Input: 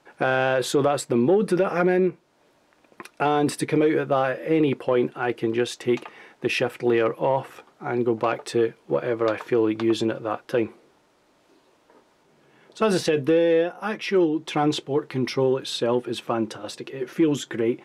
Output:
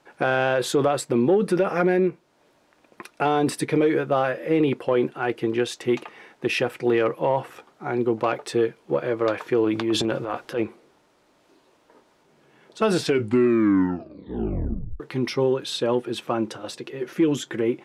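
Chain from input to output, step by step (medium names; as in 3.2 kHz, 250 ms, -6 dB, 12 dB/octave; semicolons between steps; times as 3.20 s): 9.64–10.63 s: transient shaper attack -8 dB, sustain +7 dB; 12.88 s: tape stop 2.12 s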